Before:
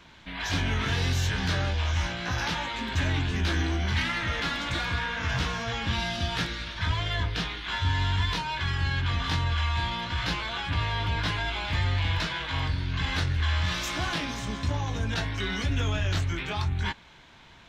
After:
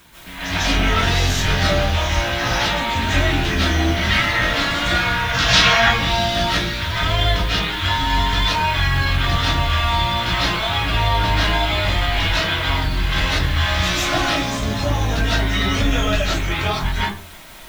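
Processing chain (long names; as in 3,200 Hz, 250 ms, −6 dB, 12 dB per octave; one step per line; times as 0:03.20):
0:05.33–0:05.75: parametric band 6,100 Hz → 1,400 Hz +13 dB 2.1 octaves
in parallel at −4 dB: bit-depth reduction 8 bits, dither triangular
on the sum: convolution reverb RT60 0.40 s, pre-delay 110 ms, DRR −9.5 dB
level −2.5 dB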